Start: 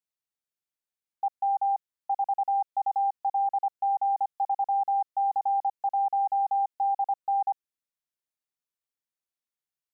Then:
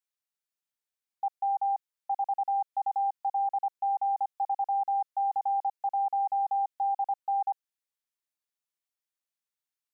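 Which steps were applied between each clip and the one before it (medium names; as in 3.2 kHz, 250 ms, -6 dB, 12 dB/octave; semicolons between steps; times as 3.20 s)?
bass shelf 480 Hz -8.5 dB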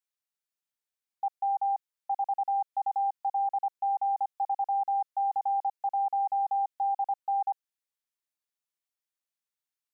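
no audible change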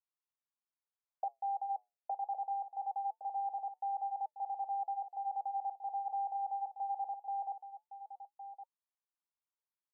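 auto-wah 500–1000 Hz, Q 2.4, down, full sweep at -34.5 dBFS; flange 0.26 Hz, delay 2 ms, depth 8.6 ms, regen -73%; delay 1113 ms -12 dB; trim +4 dB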